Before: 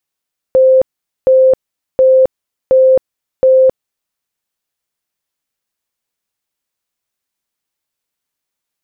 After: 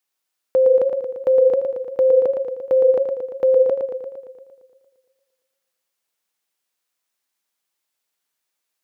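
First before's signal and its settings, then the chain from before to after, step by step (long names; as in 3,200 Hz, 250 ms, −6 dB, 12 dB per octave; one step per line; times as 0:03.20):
tone bursts 522 Hz, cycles 139, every 0.72 s, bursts 5, −4.5 dBFS
high-pass filter 410 Hz 6 dB per octave
brickwall limiter −11 dBFS
feedback echo with a swinging delay time 115 ms, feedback 63%, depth 87 cents, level −6 dB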